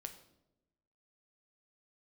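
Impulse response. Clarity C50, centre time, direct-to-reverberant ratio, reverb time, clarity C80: 11.0 dB, 11 ms, 6.0 dB, 0.90 s, 13.5 dB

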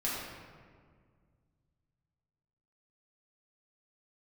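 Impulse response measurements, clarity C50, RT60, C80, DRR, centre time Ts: -1.0 dB, 1.9 s, 1.0 dB, -8.0 dB, 0.1 s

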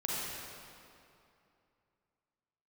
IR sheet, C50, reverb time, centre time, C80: -4.5 dB, 2.7 s, 0.171 s, -2.0 dB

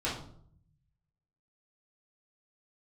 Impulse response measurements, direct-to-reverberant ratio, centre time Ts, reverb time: -8.5 dB, 38 ms, 0.60 s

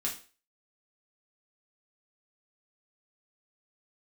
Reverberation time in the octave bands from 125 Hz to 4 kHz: 0.35, 0.35, 0.40, 0.35, 0.35, 0.35 s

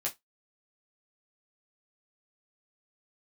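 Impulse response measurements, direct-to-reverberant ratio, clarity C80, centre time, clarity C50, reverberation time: -4.0 dB, 30.5 dB, 14 ms, 18.5 dB, 0.15 s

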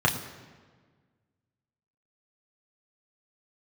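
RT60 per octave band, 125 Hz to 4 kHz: 1.8, 1.9, 1.6, 1.4, 1.3, 1.1 s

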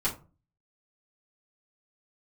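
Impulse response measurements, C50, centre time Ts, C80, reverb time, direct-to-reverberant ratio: 11.5 dB, 16 ms, 17.5 dB, 0.35 s, -9.0 dB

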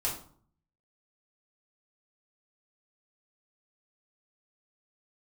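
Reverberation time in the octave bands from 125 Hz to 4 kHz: 0.85, 0.70, 0.55, 0.55, 0.35, 0.35 s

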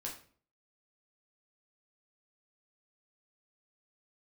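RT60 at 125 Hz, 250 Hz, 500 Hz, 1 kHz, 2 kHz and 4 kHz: 0.60, 0.60, 0.50, 0.40, 0.40, 0.35 s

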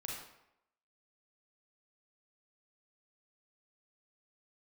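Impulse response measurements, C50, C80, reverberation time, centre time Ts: 1.0 dB, 4.5 dB, 0.80 s, 57 ms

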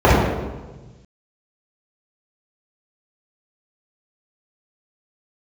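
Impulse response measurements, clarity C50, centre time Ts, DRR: -1.5 dB, 96 ms, -10.0 dB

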